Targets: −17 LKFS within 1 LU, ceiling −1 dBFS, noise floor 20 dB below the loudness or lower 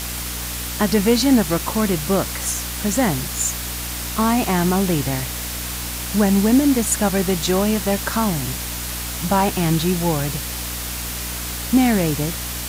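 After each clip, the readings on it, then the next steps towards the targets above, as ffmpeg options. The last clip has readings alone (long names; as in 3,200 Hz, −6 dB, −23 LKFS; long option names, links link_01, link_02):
mains hum 60 Hz; hum harmonics up to 300 Hz; level of the hum −30 dBFS; background noise floor −28 dBFS; target noise floor −40 dBFS; integrated loudness −20.0 LKFS; sample peak −4.0 dBFS; target loudness −17.0 LKFS
→ -af "bandreject=frequency=60:width_type=h:width=4,bandreject=frequency=120:width_type=h:width=4,bandreject=frequency=180:width_type=h:width=4,bandreject=frequency=240:width_type=h:width=4,bandreject=frequency=300:width_type=h:width=4"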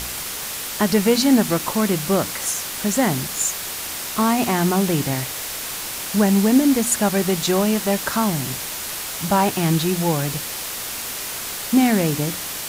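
mains hum none found; background noise floor −29 dBFS; target noise floor −41 dBFS
→ -af "afftdn=noise_reduction=12:noise_floor=-29"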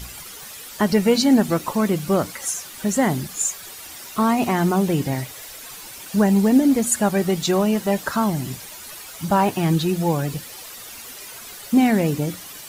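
background noise floor −38 dBFS; target noise floor −41 dBFS
→ -af "afftdn=noise_reduction=6:noise_floor=-38"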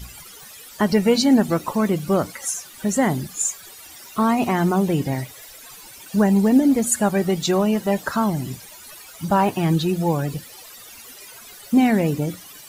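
background noise floor −42 dBFS; integrated loudness −20.5 LKFS; sample peak −5.5 dBFS; target loudness −17.0 LKFS
→ -af "volume=3.5dB"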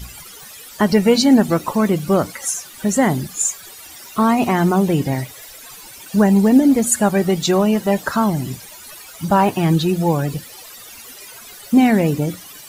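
integrated loudness −17.0 LKFS; sample peak −2.0 dBFS; background noise floor −39 dBFS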